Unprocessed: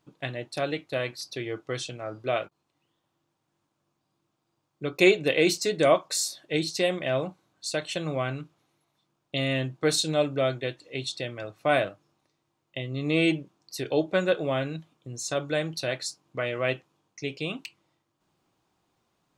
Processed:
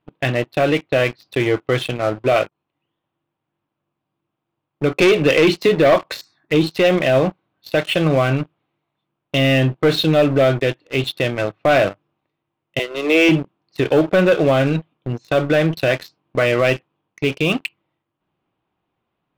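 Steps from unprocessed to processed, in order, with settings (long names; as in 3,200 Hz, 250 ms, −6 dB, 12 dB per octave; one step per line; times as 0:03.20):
Chebyshev low-pass filter 3,000 Hz, order 3
0:06.21–0:06.71: phaser swept by the level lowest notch 470 Hz, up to 1,700 Hz, full sweep at −28 dBFS
0:12.79–0:13.29: Butterworth high-pass 330 Hz 48 dB per octave
leveller curve on the samples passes 3
boost into a limiter +11.5 dB
0:05.02–0:05.69: multiband upward and downward compressor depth 40%
level −6.5 dB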